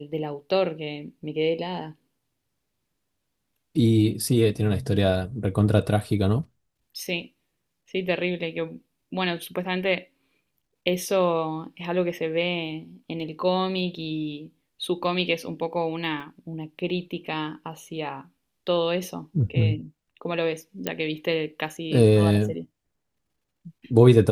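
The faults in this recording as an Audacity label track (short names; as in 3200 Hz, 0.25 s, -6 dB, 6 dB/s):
16.200000	16.200000	gap 4 ms
20.870000	20.870000	pop -11 dBFS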